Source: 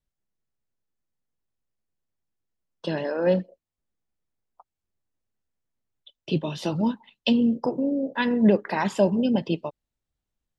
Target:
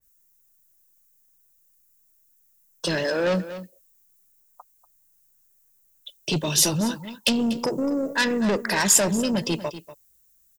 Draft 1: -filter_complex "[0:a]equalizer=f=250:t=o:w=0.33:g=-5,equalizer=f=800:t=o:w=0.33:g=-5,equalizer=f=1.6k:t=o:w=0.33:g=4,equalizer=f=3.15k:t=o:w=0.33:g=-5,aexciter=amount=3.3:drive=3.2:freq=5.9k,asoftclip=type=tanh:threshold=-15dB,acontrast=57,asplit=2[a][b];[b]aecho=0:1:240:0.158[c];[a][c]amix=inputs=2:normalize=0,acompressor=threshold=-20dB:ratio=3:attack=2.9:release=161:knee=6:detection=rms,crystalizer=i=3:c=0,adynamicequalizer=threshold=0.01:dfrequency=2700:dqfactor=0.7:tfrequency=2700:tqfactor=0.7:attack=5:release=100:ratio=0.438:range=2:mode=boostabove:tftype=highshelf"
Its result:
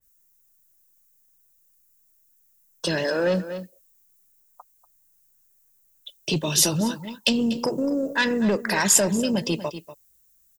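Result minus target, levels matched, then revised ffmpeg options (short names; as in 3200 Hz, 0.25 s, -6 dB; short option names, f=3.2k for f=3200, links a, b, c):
soft clip: distortion -7 dB
-filter_complex "[0:a]equalizer=f=250:t=o:w=0.33:g=-5,equalizer=f=800:t=o:w=0.33:g=-5,equalizer=f=1.6k:t=o:w=0.33:g=4,equalizer=f=3.15k:t=o:w=0.33:g=-5,aexciter=amount=3.3:drive=3.2:freq=5.9k,asoftclip=type=tanh:threshold=-22dB,acontrast=57,asplit=2[a][b];[b]aecho=0:1:240:0.158[c];[a][c]amix=inputs=2:normalize=0,acompressor=threshold=-20dB:ratio=3:attack=2.9:release=161:knee=6:detection=rms,crystalizer=i=3:c=0,adynamicequalizer=threshold=0.01:dfrequency=2700:dqfactor=0.7:tfrequency=2700:tqfactor=0.7:attack=5:release=100:ratio=0.438:range=2:mode=boostabove:tftype=highshelf"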